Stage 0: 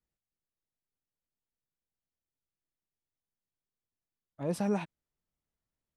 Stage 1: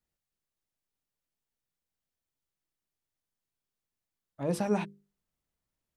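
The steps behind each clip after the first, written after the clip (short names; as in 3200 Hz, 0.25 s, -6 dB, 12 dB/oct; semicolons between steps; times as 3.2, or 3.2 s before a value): notches 50/100/150/200/250/300/350/400/450/500 Hz; gain +3 dB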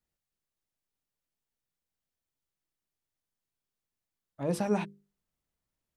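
nothing audible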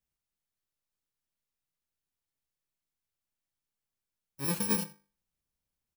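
FFT order left unsorted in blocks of 64 samples; echo 83 ms -20.5 dB; gain -1.5 dB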